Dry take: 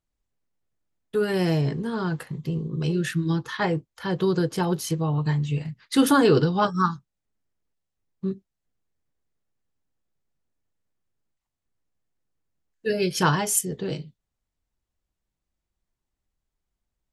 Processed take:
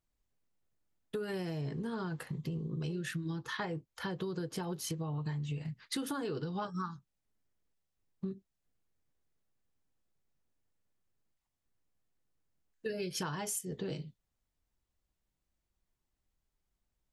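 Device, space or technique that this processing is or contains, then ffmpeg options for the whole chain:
serial compression, peaks first: -af "acompressor=threshold=0.0447:ratio=6,acompressor=threshold=0.0141:ratio=2,volume=0.841"

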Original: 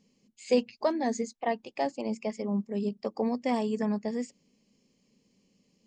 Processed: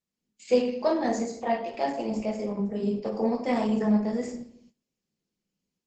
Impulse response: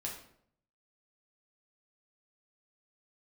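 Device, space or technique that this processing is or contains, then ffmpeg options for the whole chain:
speakerphone in a meeting room: -filter_complex "[1:a]atrim=start_sample=2205[s0];[0:a][s0]afir=irnorm=-1:irlink=0,dynaudnorm=f=120:g=3:m=3.16,agate=range=0.1:threshold=0.00316:ratio=16:detection=peak,volume=0.473" -ar 48000 -c:a libopus -b:a 12k

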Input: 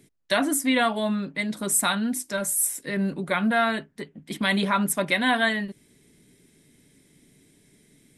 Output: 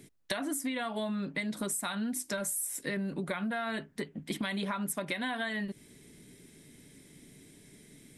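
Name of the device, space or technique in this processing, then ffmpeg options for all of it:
serial compression, leveller first: -af "acompressor=threshold=0.0562:ratio=6,acompressor=threshold=0.0178:ratio=5,volume=1.41"

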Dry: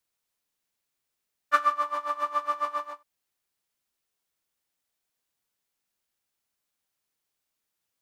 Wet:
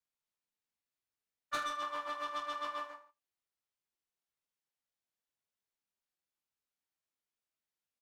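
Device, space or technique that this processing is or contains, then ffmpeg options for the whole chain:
one-band saturation: -filter_complex "[0:a]agate=range=0.447:threshold=0.0141:ratio=16:detection=peak,highshelf=f=7200:g=-7.5,acrossover=split=390|3300[s0][s1][s2];[s1]asoftclip=type=tanh:threshold=0.0447[s3];[s0][s3][s2]amix=inputs=3:normalize=0,aecho=1:1:20|45|76.25|115.3|164.1:0.631|0.398|0.251|0.158|0.1,volume=0.562"

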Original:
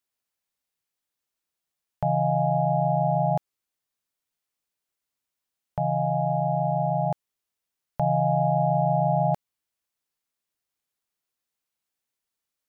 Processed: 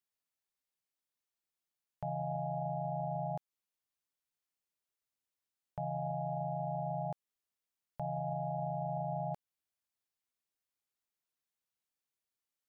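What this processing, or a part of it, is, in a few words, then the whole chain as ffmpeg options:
stacked limiters: -af "alimiter=limit=0.126:level=0:latency=1:release=211,alimiter=limit=0.0794:level=0:latency=1:release=25,volume=0.422"

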